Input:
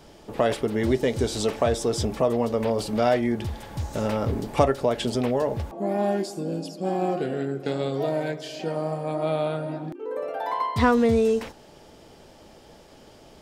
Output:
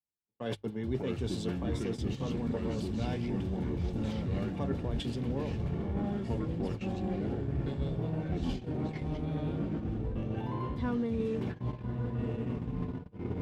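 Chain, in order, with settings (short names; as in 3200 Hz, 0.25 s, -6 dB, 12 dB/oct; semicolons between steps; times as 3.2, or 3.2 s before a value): bell 3400 Hz +5.5 dB 0.57 oct; notch comb 640 Hz; diffused feedback echo 1.23 s, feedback 57%, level -10 dB; echoes that change speed 0.501 s, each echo -4 st, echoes 3; in parallel at -8 dB: soft clip -23 dBFS, distortion -9 dB; on the sum: tone controls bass +12 dB, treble -5 dB; gate -18 dBFS, range -29 dB; notches 50/100/150 Hz; reverse; compressor 5:1, threshold -24 dBFS, peak gain reduction 15 dB; reverse; three-band expander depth 70%; gain -7 dB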